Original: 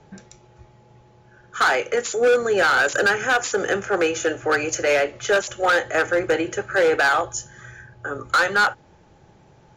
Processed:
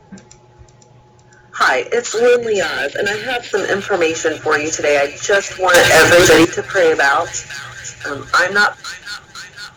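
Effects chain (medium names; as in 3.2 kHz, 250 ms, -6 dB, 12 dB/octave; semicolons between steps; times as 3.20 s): coarse spectral quantiser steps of 15 dB; 2.36–3.53 s: static phaser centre 2.8 kHz, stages 4; on a send: feedback echo behind a high-pass 507 ms, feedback 65%, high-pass 2.9 kHz, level -6 dB; 5.74–6.45 s: on the sum: waveshaping leveller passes 5; trim +5.5 dB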